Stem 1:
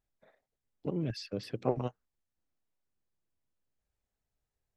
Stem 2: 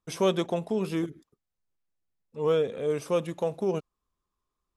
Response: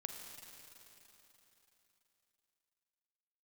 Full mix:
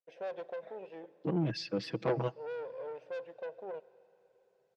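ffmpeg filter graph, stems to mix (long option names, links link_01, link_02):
-filter_complex "[0:a]aecho=1:1:6.1:0.81,asoftclip=type=tanh:threshold=-27dB,adelay=400,volume=2.5dB,asplit=2[link_01][link_02];[link_02]volume=-19.5dB[link_03];[1:a]asplit=3[link_04][link_05][link_06];[link_04]bandpass=frequency=530:width_type=q:width=8,volume=0dB[link_07];[link_05]bandpass=frequency=1840:width_type=q:width=8,volume=-6dB[link_08];[link_06]bandpass=frequency=2480:width_type=q:width=8,volume=-9dB[link_09];[link_07][link_08][link_09]amix=inputs=3:normalize=0,aeval=exprs='(tanh(63.1*val(0)+0.4)-tanh(0.4))/63.1':channel_layout=same,equalizer=frequency=750:width_type=o:width=0.66:gain=13,volume=-6dB,asplit=2[link_10][link_11];[link_11]volume=-10dB[link_12];[2:a]atrim=start_sample=2205[link_13];[link_03][link_12]amix=inputs=2:normalize=0[link_14];[link_14][link_13]afir=irnorm=-1:irlink=0[link_15];[link_01][link_10][link_15]amix=inputs=3:normalize=0,highpass=140,lowpass=5300"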